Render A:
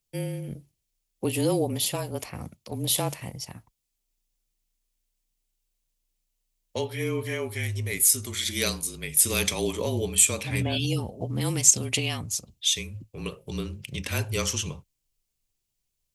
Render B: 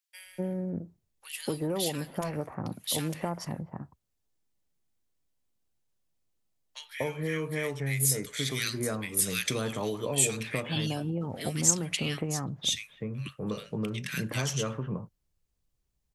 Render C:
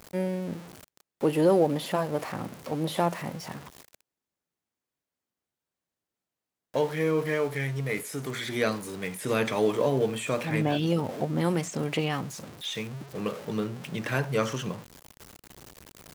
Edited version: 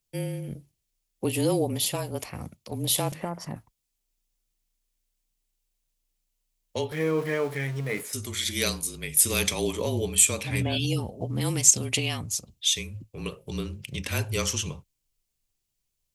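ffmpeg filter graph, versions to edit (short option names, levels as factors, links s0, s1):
-filter_complex "[0:a]asplit=3[s0][s1][s2];[s0]atrim=end=3.122[s3];[1:a]atrim=start=3.118:end=3.562[s4];[s1]atrim=start=3.558:end=6.922[s5];[2:a]atrim=start=6.918:end=8.132[s6];[s2]atrim=start=8.128[s7];[s3][s4]acrossfade=d=0.004:c1=hsin:c2=hsin[s8];[s8][s5]acrossfade=d=0.004:c1=hsin:c2=hsin[s9];[s9][s6]acrossfade=d=0.004:c1=hsin:c2=hsin[s10];[s10][s7]acrossfade=d=0.004:c1=hsin:c2=hsin"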